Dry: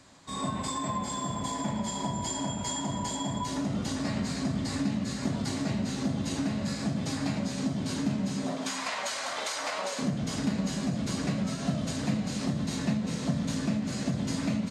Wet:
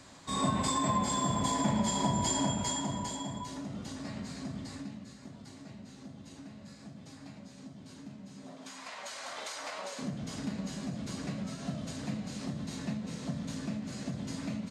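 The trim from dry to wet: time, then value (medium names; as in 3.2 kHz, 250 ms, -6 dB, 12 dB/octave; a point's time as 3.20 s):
2.41 s +2.5 dB
3.60 s -9.5 dB
4.59 s -9.5 dB
5.22 s -18 dB
8.25 s -18 dB
9.30 s -7.5 dB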